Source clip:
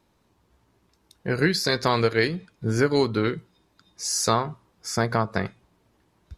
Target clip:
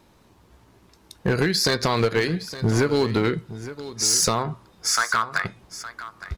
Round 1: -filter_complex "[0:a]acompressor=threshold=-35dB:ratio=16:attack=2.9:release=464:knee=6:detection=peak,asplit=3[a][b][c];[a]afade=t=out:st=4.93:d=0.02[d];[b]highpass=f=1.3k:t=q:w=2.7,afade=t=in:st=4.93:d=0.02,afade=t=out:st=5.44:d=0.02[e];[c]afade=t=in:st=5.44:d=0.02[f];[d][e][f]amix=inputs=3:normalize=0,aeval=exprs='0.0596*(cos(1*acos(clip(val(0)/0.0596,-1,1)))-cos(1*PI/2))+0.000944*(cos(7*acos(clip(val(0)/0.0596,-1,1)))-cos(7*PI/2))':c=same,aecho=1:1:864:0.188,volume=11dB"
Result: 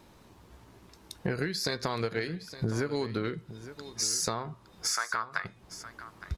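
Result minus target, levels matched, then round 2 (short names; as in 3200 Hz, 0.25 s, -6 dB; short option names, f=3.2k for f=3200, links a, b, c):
compressor: peak gain reduction +11 dB
-filter_complex "[0:a]acompressor=threshold=-23.5dB:ratio=16:attack=2.9:release=464:knee=6:detection=peak,asplit=3[a][b][c];[a]afade=t=out:st=4.93:d=0.02[d];[b]highpass=f=1.3k:t=q:w=2.7,afade=t=in:st=4.93:d=0.02,afade=t=out:st=5.44:d=0.02[e];[c]afade=t=in:st=5.44:d=0.02[f];[d][e][f]amix=inputs=3:normalize=0,aeval=exprs='0.0596*(cos(1*acos(clip(val(0)/0.0596,-1,1)))-cos(1*PI/2))+0.000944*(cos(7*acos(clip(val(0)/0.0596,-1,1)))-cos(7*PI/2))':c=same,aecho=1:1:864:0.188,volume=11dB"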